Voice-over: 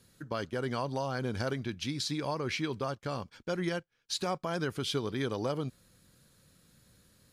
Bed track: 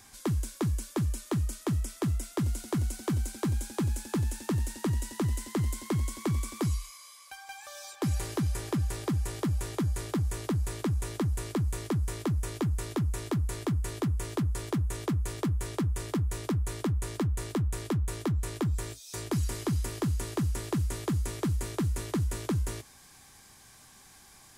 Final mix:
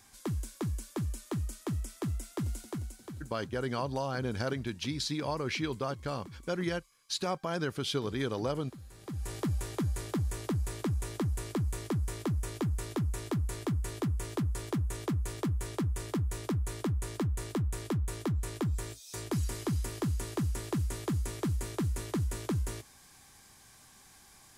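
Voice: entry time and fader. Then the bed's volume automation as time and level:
3.00 s, 0.0 dB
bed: 2.58 s -5 dB
3.43 s -20.5 dB
8.88 s -20.5 dB
9.31 s -2.5 dB

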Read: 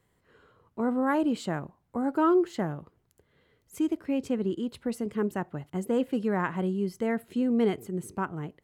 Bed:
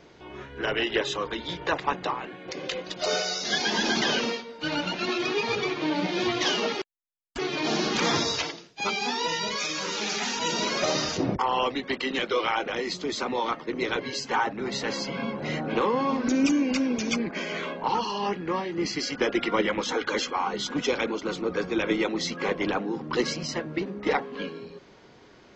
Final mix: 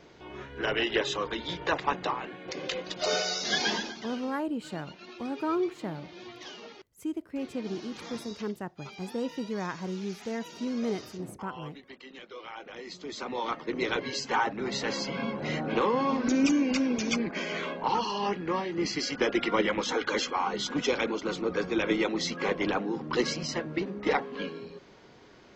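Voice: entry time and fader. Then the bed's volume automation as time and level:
3.25 s, -6.0 dB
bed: 3.71 s -1.5 dB
3.97 s -19 dB
12.32 s -19 dB
13.67 s -1.5 dB

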